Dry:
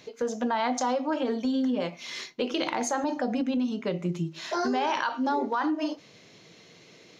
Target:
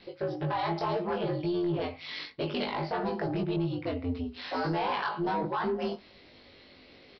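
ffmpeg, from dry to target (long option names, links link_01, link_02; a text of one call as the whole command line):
ffmpeg -i in.wav -filter_complex "[0:a]aeval=exprs='val(0)*sin(2*PI*88*n/s)':channel_layout=same,aresample=11025,asoftclip=type=tanh:threshold=-24dB,aresample=44100,bandreject=frequency=50:width_type=h:width=6,bandreject=frequency=100:width_type=h:width=6,asplit=2[link_01][link_02];[link_02]adelay=20,volume=-2.5dB[link_03];[link_01][link_03]amix=inputs=2:normalize=0" out.wav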